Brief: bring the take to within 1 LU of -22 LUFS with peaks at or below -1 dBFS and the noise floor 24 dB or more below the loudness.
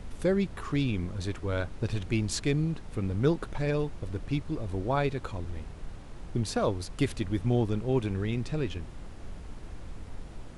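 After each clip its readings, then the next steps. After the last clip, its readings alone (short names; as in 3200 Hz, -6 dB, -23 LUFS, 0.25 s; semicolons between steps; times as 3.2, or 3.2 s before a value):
noise floor -45 dBFS; noise floor target -55 dBFS; loudness -31.0 LUFS; peak -13.5 dBFS; loudness target -22.0 LUFS
-> noise print and reduce 10 dB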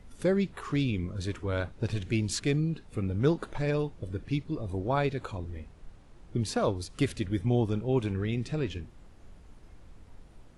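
noise floor -53 dBFS; noise floor target -55 dBFS
-> noise print and reduce 6 dB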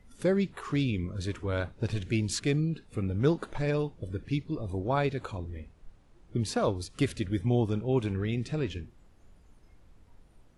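noise floor -59 dBFS; loudness -31.0 LUFS; peak -13.0 dBFS; loudness target -22.0 LUFS
-> gain +9 dB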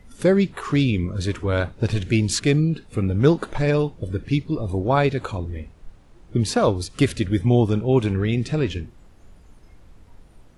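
loudness -22.0 LUFS; peak -4.0 dBFS; noise floor -50 dBFS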